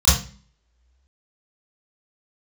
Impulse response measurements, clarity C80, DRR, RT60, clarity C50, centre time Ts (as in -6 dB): 9.5 dB, -12.0 dB, 0.40 s, 3.0 dB, 47 ms